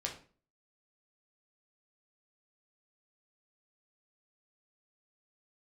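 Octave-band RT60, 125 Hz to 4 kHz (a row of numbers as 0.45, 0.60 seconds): 0.50, 0.50, 0.45, 0.35, 0.35, 0.30 seconds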